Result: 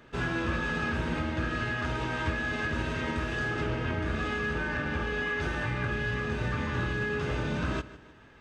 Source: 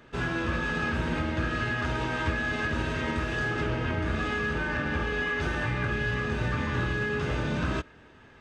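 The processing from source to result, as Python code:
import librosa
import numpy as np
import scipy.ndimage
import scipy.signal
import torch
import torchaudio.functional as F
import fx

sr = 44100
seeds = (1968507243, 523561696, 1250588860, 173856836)

p1 = fx.rider(x, sr, range_db=10, speed_s=2.0)
p2 = p1 + fx.echo_feedback(p1, sr, ms=153, feedback_pct=43, wet_db=-17.5, dry=0)
y = p2 * 10.0 ** (-2.0 / 20.0)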